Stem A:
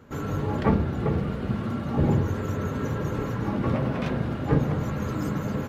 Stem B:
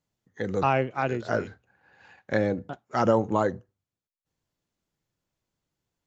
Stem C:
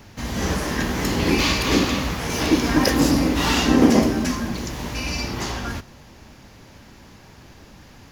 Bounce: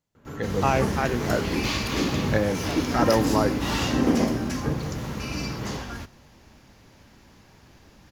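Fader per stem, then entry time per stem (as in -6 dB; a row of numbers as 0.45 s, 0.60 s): -5.5 dB, +0.5 dB, -7.0 dB; 0.15 s, 0.00 s, 0.25 s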